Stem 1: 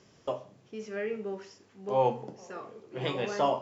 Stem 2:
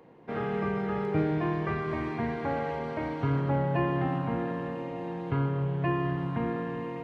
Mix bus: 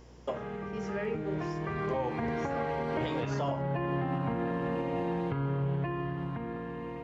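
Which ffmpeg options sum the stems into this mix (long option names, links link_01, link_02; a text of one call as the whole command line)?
ffmpeg -i stem1.wav -i stem2.wav -filter_complex "[0:a]volume=-1dB[link_01];[1:a]acompressor=threshold=-29dB:ratio=6,alimiter=level_in=2.5dB:limit=-24dB:level=0:latency=1:release=166,volume=-2.5dB,dynaudnorm=framelen=270:gausssize=13:maxgain=9dB,volume=-3.5dB[link_02];[link_01][link_02]amix=inputs=2:normalize=0,aeval=exprs='val(0)+0.00224*(sin(2*PI*60*n/s)+sin(2*PI*2*60*n/s)/2+sin(2*PI*3*60*n/s)/3+sin(2*PI*4*60*n/s)/4+sin(2*PI*5*60*n/s)/5)':channel_layout=same,alimiter=limit=-23dB:level=0:latency=1:release=190" out.wav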